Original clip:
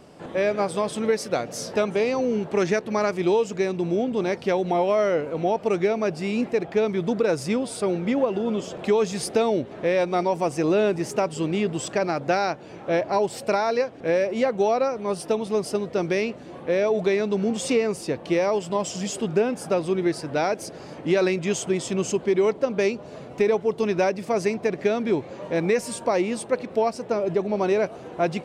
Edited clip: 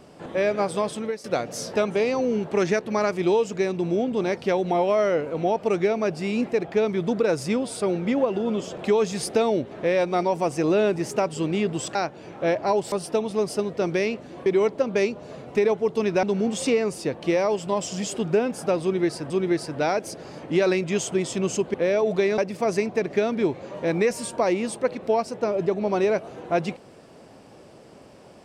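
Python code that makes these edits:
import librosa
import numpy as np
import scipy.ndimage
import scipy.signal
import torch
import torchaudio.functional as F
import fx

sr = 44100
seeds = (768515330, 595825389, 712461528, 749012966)

y = fx.edit(x, sr, fx.fade_out_to(start_s=0.84, length_s=0.4, floor_db=-15.0),
    fx.cut(start_s=11.95, length_s=0.46),
    fx.cut(start_s=13.38, length_s=1.7),
    fx.swap(start_s=16.62, length_s=0.64, other_s=22.29, other_length_s=1.77),
    fx.repeat(start_s=19.85, length_s=0.48, count=2), tone=tone)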